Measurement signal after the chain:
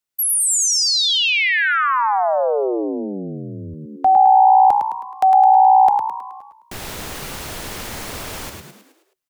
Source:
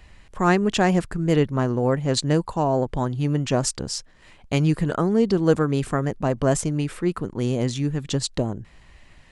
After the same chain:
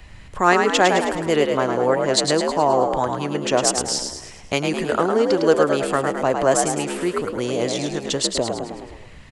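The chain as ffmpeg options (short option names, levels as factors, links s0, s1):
-filter_complex "[0:a]asplit=7[s0][s1][s2][s3][s4][s5][s6];[s1]adelay=106,afreqshift=61,volume=0.531[s7];[s2]adelay=212,afreqshift=122,volume=0.26[s8];[s3]adelay=318,afreqshift=183,volume=0.127[s9];[s4]adelay=424,afreqshift=244,volume=0.0624[s10];[s5]adelay=530,afreqshift=305,volume=0.0305[s11];[s6]adelay=636,afreqshift=366,volume=0.015[s12];[s0][s7][s8][s9][s10][s11][s12]amix=inputs=7:normalize=0,acrossover=split=360|1800[s13][s14][s15];[s13]acompressor=threshold=0.0126:ratio=6[s16];[s16][s14][s15]amix=inputs=3:normalize=0,volume=1.88"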